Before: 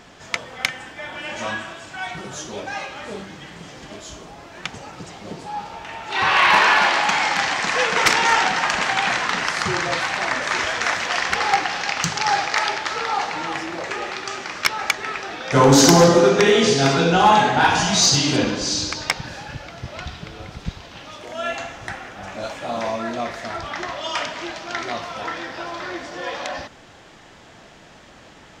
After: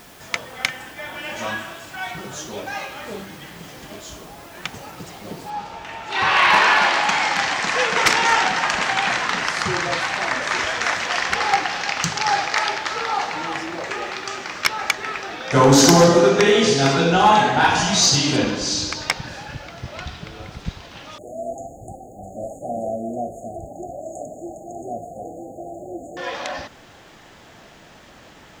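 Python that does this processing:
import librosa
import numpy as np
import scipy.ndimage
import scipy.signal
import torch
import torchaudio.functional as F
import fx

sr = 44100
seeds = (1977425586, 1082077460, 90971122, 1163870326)

y = fx.noise_floor_step(x, sr, seeds[0], at_s=5.5, before_db=-50, after_db=-67, tilt_db=0.0)
y = fx.brickwall_bandstop(y, sr, low_hz=810.0, high_hz=6500.0, at=(21.18, 26.17))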